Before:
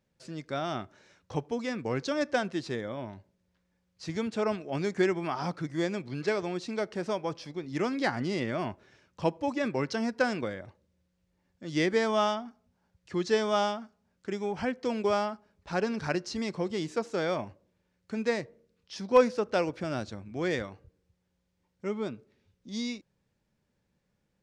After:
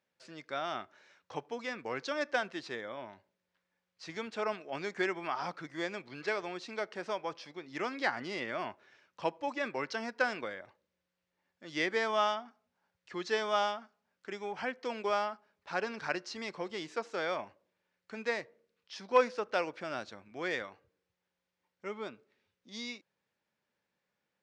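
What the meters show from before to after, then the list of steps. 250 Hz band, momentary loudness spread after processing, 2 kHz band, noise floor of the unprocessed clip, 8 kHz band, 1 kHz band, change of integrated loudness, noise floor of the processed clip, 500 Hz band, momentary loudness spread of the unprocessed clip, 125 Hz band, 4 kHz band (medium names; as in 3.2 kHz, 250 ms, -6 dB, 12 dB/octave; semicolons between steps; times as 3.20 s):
-11.0 dB, 15 LU, 0.0 dB, -77 dBFS, -6.0 dB, -2.0 dB, -4.5 dB, under -85 dBFS, -6.0 dB, 13 LU, -15.5 dB, -2.5 dB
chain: band-pass filter 1.8 kHz, Q 0.51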